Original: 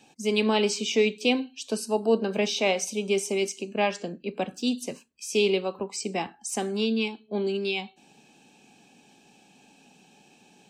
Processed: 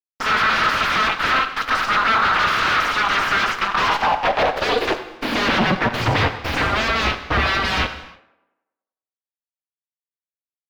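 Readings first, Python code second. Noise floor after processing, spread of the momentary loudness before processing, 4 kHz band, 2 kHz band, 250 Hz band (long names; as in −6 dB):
below −85 dBFS, 9 LU, +8.5 dB, +15.5 dB, +0.5 dB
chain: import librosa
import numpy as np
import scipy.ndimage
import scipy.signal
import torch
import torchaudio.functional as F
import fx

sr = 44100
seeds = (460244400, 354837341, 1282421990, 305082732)

p1 = fx.cheby_harmonics(x, sr, harmonics=(8,), levels_db=(-7,), full_scale_db=-11.0)
p2 = fx.dynamic_eq(p1, sr, hz=8500.0, q=0.85, threshold_db=-46.0, ratio=4.0, max_db=6)
p3 = fx.level_steps(p2, sr, step_db=12)
p4 = p2 + (p3 * librosa.db_to_amplitude(0.0))
p5 = fx.leveller(p4, sr, passes=5)
p6 = fx.spec_gate(p5, sr, threshold_db=-15, keep='weak')
p7 = fx.vibrato(p6, sr, rate_hz=0.35, depth_cents=35.0)
p8 = fx.filter_sweep_highpass(p7, sr, from_hz=1300.0, to_hz=69.0, start_s=3.64, end_s=6.55, q=4.1)
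p9 = fx.fuzz(p8, sr, gain_db=28.0, gate_db=-28.0)
p10 = fx.air_absorb(p9, sr, metres=300.0)
p11 = p10 + fx.echo_tape(p10, sr, ms=97, feedback_pct=57, wet_db=-13.5, lp_hz=2800.0, drive_db=18.0, wow_cents=24, dry=0)
y = fx.rev_gated(p11, sr, seeds[0], gate_ms=350, shape='falling', drr_db=9.0)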